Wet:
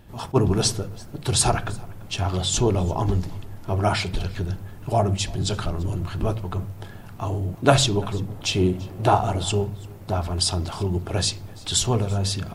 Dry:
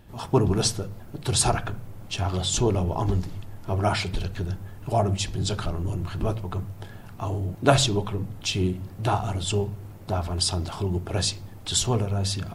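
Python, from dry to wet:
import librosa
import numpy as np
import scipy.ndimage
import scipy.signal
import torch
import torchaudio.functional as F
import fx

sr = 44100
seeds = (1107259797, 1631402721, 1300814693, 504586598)

y = fx.peak_eq(x, sr, hz=580.0, db=6.5, octaves=2.0, at=(8.28, 9.43))
y = y + 10.0 ** (-23.5 / 20.0) * np.pad(y, (int(339 * sr / 1000.0), 0))[:len(y)]
y = fx.attack_slew(y, sr, db_per_s=580.0)
y = y * librosa.db_to_amplitude(2.0)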